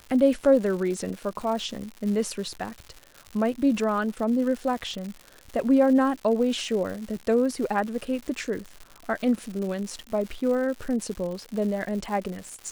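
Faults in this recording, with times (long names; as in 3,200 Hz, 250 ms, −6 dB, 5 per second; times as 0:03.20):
surface crackle 200 per second −33 dBFS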